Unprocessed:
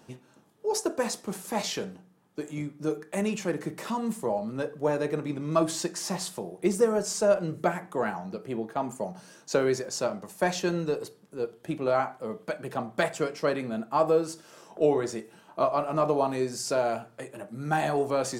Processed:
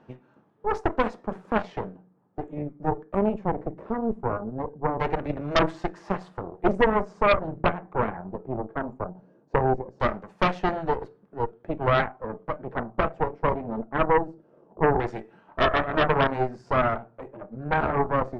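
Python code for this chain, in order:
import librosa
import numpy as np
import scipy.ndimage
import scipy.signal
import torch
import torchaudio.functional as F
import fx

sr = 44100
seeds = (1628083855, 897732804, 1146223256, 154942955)

y = fx.filter_lfo_lowpass(x, sr, shape='saw_down', hz=0.2, low_hz=440.0, high_hz=1900.0, q=0.81)
y = fx.cheby_harmonics(y, sr, harmonics=(6,), levels_db=(-7,), full_scale_db=-11.0)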